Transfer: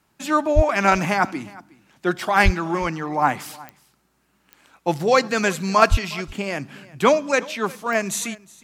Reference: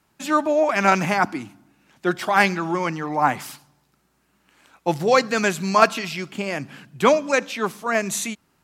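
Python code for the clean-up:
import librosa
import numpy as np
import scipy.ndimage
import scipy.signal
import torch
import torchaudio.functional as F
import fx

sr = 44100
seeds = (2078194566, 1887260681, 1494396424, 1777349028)

y = fx.fix_declick_ar(x, sr, threshold=10.0)
y = fx.fix_deplosive(y, sr, at_s=(0.55, 2.44, 5.9))
y = fx.fix_echo_inverse(y, sr, delay_ms=363, level_db=-22.0)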